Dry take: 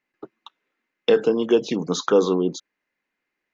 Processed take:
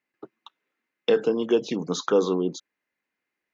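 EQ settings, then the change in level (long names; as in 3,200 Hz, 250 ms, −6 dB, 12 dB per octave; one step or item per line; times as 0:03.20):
high-pass filter 51 Hz
−3.5 dB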